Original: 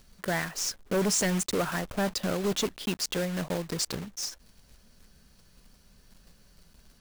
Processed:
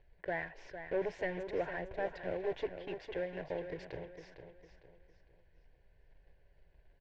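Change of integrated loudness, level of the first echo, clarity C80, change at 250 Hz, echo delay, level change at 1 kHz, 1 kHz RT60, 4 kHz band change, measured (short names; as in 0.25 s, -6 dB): -10.0 dB, -9.5 dB, none, -14.5 dB, 0.455 s, -8.5 dB, none, -23.0 dB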